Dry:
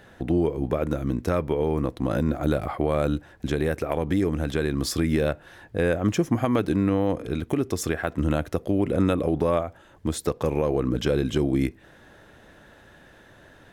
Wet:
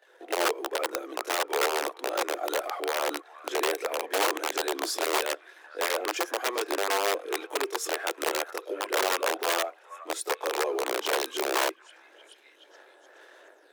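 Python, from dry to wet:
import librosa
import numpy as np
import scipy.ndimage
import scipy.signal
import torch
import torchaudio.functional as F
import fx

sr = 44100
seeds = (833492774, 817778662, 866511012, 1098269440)

p1 = fx.chorus_voices(x, sr, voices=4, hz=0.85, base_ms=23, depth_ms=1.5, mix_pct=70)
p2 = fx.leveller(p1, sr, passes=1)
p3 = p2 + fx.echo_stepped(p2, sr, ms=422, hz=1300.0, octaves=0.7, feedback_pct=70, wet_db=-11, dry=0)
p4 = (np.mod(10.0 ** (15.5 / 20.0) * p3 + 1.0, 2.0) - 1.0) / 10.0 ** (15.5 / 20.0)
p5 = scipy.signal.sosfilt(scipy.signal.butter(8, 350.0, 'highpass', fs=sr, output='sos'), p4)
y = p5 * 10.0 ** (-3.5 / 20.0)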